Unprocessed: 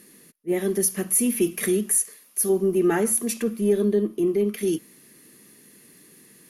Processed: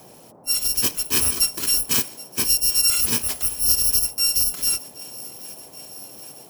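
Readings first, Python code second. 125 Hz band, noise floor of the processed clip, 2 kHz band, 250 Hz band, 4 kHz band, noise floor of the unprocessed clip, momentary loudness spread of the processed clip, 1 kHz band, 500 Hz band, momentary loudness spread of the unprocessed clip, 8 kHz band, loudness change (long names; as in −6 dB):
−5.5 dB, −47 dBFS, +2.5 dB, −14.0 dB, +20.0 dB, −53 dBFS, 20 LU, −1.5 dB, −18.5 dB, 6 LU, +5.5 dB, +4.5 dB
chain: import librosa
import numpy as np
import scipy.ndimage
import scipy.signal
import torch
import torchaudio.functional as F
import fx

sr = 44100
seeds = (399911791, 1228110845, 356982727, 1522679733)

y = fx.bit_reversed(x, sr, seeds[0], block=256)
y = fx.echo_thinned(y, sr, ms=776, feedback_pct=73, hz=420.0, wet_db=-20)
y = fx.dmg_noise_band(y, sr, seeds[1], low_hz=110.0, high_hz=830.0, level_db=-51.0)
y = F.gain(torch.from_numpy(y), 1.5).numpy()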